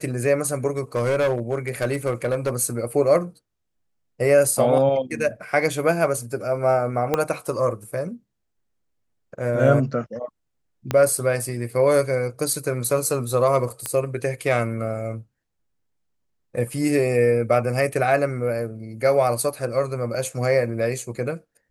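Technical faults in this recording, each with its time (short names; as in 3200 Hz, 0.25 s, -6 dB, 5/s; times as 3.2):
0.78–2.56 clipped -17 dBFS
7.14 pop -7 dBFS
10.91 pop -9 dBFS
13.86 pop -10 dBFS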